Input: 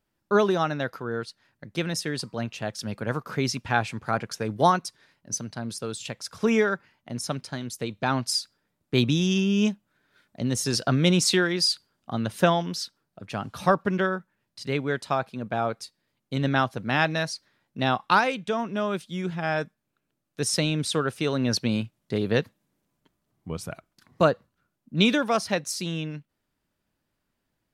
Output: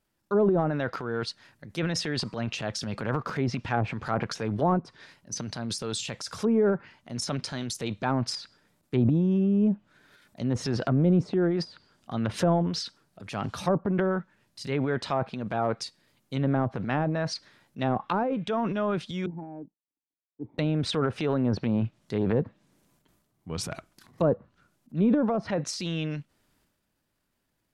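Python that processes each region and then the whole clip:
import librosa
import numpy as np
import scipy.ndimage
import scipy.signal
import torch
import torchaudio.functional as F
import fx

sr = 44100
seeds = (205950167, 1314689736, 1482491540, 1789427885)

y = fx.chain(x, sr, fx.law_mismatch(coded='A'),
    fx.formant_cascade(vowel='u'),
    fx.band_widen(depth_pct=40), at=(19.26, 20.59))
y = fx.env_lowpass_down(y, sr, base_hz=580.0, full_db=-19.0)
y = fx.high_shelf(y, sr, hz=5500.0, db=4.5)
y = fx.transient(y, sr, attack_db=-4, sustain_db=9)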